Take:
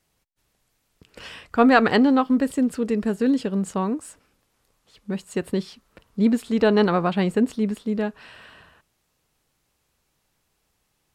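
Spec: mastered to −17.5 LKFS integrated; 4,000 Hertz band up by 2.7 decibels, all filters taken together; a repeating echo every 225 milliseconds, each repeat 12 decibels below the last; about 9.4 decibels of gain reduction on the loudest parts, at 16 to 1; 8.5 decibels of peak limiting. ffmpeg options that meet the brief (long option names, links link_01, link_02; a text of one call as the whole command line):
ffmpeg -i in.wav -af "equalizer=frequency=4000:width_type=o:gain=3.5,acompressor=threshold=-20dB:ratio=16,alimiter=limit=-19.5dB:level=0:latency=1,aecho=1:1:225|450|675:0.251|0.0628|0.0157,volume=12dB" out.wav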